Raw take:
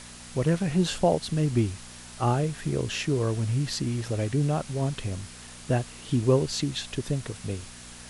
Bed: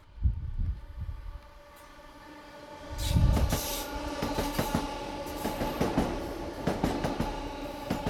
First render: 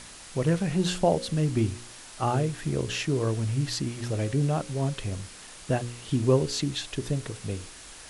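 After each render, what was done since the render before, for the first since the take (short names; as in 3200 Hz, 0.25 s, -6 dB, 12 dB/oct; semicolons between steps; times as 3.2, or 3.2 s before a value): de-hum 60 Hz, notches 9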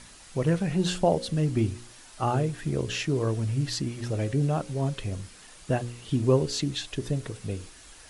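denoiser 6 dB, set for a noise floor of -46 dBFS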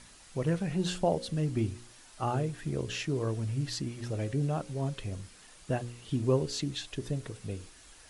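gain -5 dB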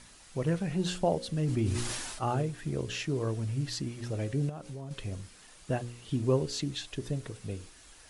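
1.44–2.42 sustainer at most 30 dB/s; 4.49–4.91 compressor, threshold -37 dBFS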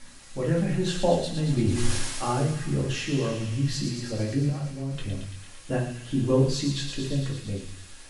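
thin delay 0.113 s, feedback 76%, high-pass 2000 Hz, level -5.5 dB; shoebox room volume 210 m³, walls furnished, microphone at 2.3 m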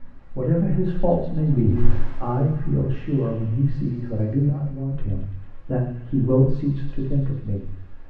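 LPF 1400 Hz 12 dB/oct; tilt -2 dB/oct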